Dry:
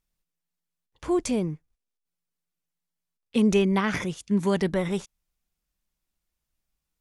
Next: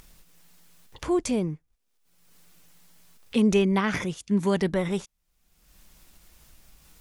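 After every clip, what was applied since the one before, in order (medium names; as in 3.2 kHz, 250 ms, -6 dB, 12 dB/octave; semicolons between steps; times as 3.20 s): upward compressor, threshold -31 dBFS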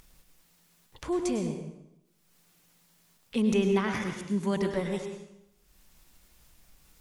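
plate-style reverb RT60 0.88 s, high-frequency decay 0.85×, pre-delay 90 ms, DRR 5 dB; trim -5.5 dB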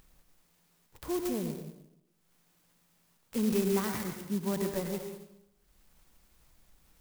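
sampling jitter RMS 0.089 ms; trim -3.5 dB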